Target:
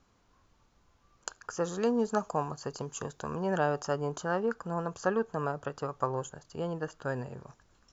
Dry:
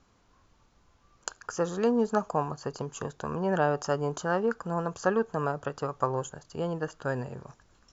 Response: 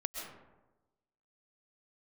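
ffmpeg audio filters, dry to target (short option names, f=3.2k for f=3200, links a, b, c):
-filter_complex "[0:a]asettb=1/sr,asplit=3[a][b][c];[a]atrim=end=1.634[d];[b]atrim=start=1.63:end=3.8,asetpts=PTS-STARTPTS,afade=t=in:d=0.004:c=qsin,afade=t=out:st=2.166:d=0.004:c=qsin,highshelf=f=5.2k:g=8[e];[c]atrim=start=3.796[f];[d][e]acrossfade=d=0.004:c1=hsin:c2=qsin[g];[g][f]acrossfade=d=0.004:c1=qsin:c2=hsin,volume=-3dB"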